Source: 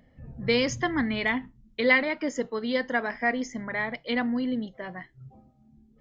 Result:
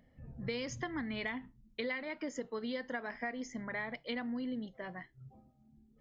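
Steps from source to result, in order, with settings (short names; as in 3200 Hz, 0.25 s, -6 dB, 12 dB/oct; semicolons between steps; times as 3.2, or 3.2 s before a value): compressor 10:1, threshold -28 dBFS, peak gain reduction 12.5 dB; gain -6.5 dB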